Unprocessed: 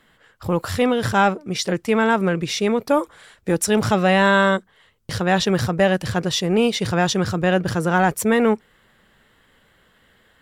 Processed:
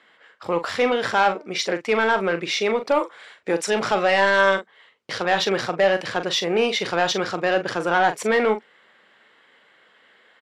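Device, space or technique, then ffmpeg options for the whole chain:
intercom: -filter_complex "[0:a]highpass=390,lowpass=4.9k,equalizer=f=2.2k:t=o:w=0.27:g=4.5,asoftclip=type=tanh:threshold=-12dB,asplit=2[a][b];[b]adelay=41,volume=-10dB[c];[a][c]amix=inputs=2:normalize=0,volume=2dB"

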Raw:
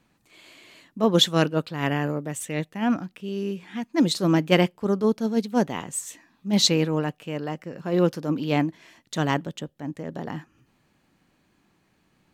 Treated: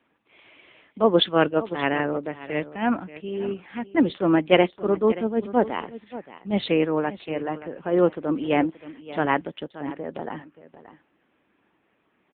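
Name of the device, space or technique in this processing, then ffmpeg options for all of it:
satellite phone: -af "highpass=300,lowpass=3.1k,aecho=1:1:577:0.168,volume=4.5dB" -ar 8000 -c:a libopencore_amrnb -b:a 6700

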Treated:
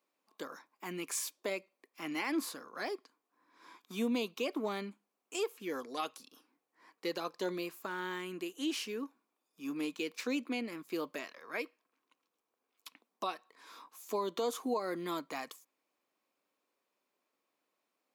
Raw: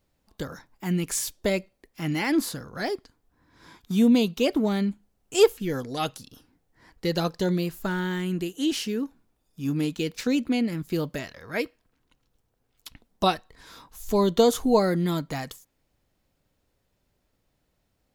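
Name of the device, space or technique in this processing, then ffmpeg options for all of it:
laptop speaker: -af "highpass=f=270:w=0.5412,highpass=f=270:w=1.3066,equalizer=f=1.1k:t=o:w=0.36:g=10,equalizer=f=2.4k:t=o:w=0.24:g=7,alimiter=limit=-16.5dB:level=0:latency=1:release=192,volume=-8.5dB"

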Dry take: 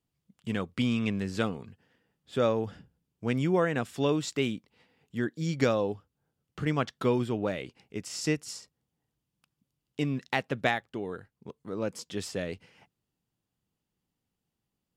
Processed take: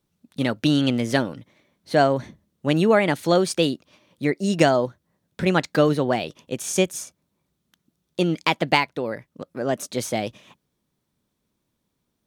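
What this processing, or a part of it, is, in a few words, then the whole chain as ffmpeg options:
nightcore: -af "asetrate=53802,aresample=44100,volume=8.5dB"

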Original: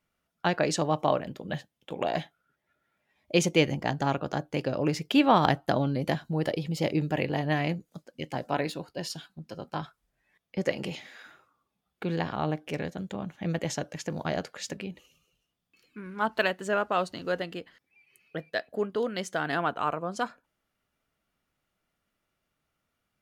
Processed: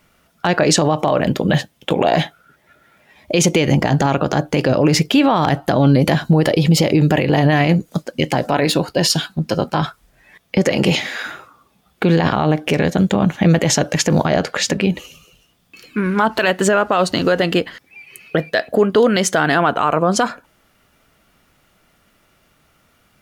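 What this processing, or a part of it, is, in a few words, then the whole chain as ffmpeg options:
loud club master: -filter_complex "[0:a]acompressor=threshold=-29dB:ratio=2,asoftclip=type=hard:threshold=-15.5dB,alimiter=level_in=26.5dB:limit=-1dB:release=50:level=0:latency=1,asettb=1/sr,asplit=3[a][b][c];[a]atrim=end=14.264[d];[b]atrim=start=14.26:end=14.84,asetpts=PTS-STARTPTS,afade=t=in:d=0.004:c=qsin,afade=t=out:st=0.576:d=0.004:c=qsin,highshelf=f=5.5k:g=-6[e];[c]atrim=start=14.836[f];[d][e]acrossfade=d=0.004:c1=hsin:c2=qsin[g];[g][f]acrossfade=d=0.004:c1=qsin:c2=hsin,volume=-4dB"

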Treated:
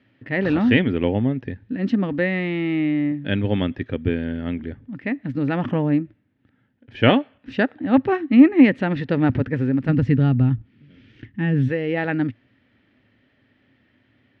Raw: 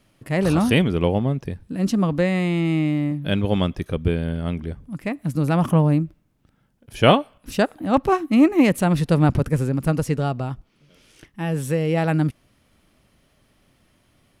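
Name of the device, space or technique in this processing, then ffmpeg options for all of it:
guitar cabinet: -filter_complex "[0:a]asplit=3[a][b][c];[a]afade=t=out:st=9.88:d=0.02[d];[b]asubboost=boost=7:cutoff=240,afade=t=in:st=9.88:d=0.02,afade=t=out:st=11.67:d=0.02[e];[c]afade=t=in:st=11.67:d=0.02[f];[d][e][f]amix=inputs=3:normalize=0,highpass=100,equalizer=f=110:t=q:w=4:g=7,equalizer=f=160:t=q:w=4:g=-8,equalizer=f=260:t=q:w=4:g=8,equalizer=f=680:t=q:w=4:g=-4,equalizer=f=1.1k:t=q:w=4:g=-8,equalizer=f=1.8k:t=q:w=4:g=9,lowpass=f=3.5k:w=0.5412,lowpass=f=3.5k:w=1.3066,volume=-1dB"

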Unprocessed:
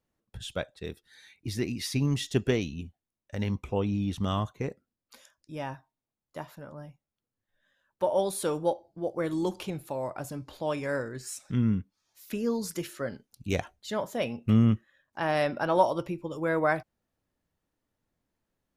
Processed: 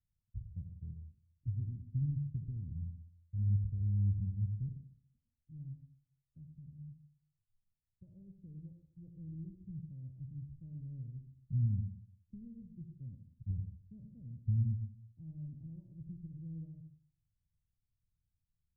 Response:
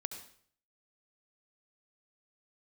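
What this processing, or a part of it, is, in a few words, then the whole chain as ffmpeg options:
club heard from the street: -filter_complex "[0:a]alimiter=limit=-20dB:level=0:latency=1:release=315,lowpass=f=130:w=0.5412,lowpass=f=130:w=1.3066[a];[1:a]atrim=start_sample=2205[b];[a][b]afir=irnorm=-1:irlink=0,volume=3dB"

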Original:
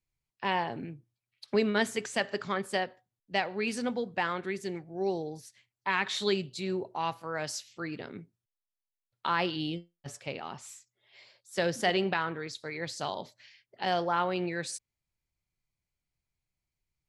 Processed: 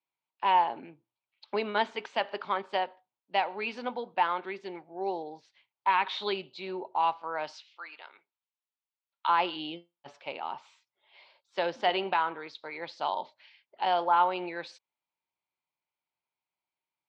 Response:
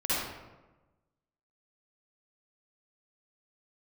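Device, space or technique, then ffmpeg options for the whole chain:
phone earpiece: -filter_complex "[0:a]asettb=1/sr,asplit=3[a][b][c];[a]atrim=end=7.534[d];[b]atrim=start=7.53:end=9.29,asetpts=PTS-STARTPTS,afade=t=in:d=0.004:c=qsin,afade=t=out:st=1.756:d=0.004:c=qsin,highpass=1.1k[e];[c]atrim=start=9.286[f];[d][e]acrossfade=d=0.004:c1=hsin:c2=qsin[g];[g][f]acrossfade=d=0.004:c1=qsin:c2=hsin,highpass=410,equalizer=f=450:t=q:w=4:g=-4,equalizer=f=910:t=q:w=4:g=9,equalizer=f=1.8k:t=q:w=4:g=-7,lowpass=f=3.7k:w=0.5412,lowpass=f=3.7k:w=1.3066,volume=1.5dB"

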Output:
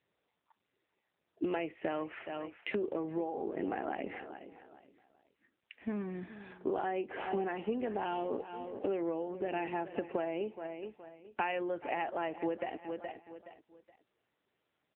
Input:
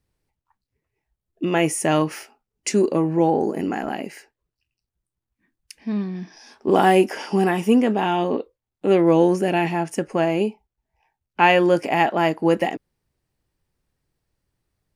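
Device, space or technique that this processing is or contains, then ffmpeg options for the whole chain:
voicemail: -af "highpass=340,lowpass=2.8k,equalizer=f=1k:w=2.2:g=-2.5,aecho=1:1:421|842|1263:0.119|0.0357|0.0107,acompressor=threshold=-31dB:ratio=10" -ar 8000 -c:a libopencore_amrnb -b:a 7950

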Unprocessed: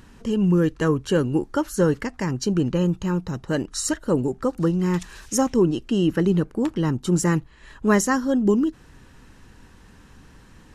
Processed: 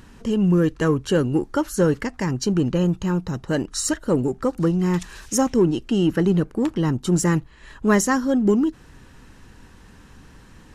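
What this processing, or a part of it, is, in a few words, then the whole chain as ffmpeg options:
parallel distortion: -filter_complex "[0:a]asplit=2[a][b];[b]asoftclip=type=hard:threshold=-22.5dB,volume=-12dB[c];[a][c]amix=inputs=2:normalize=0"

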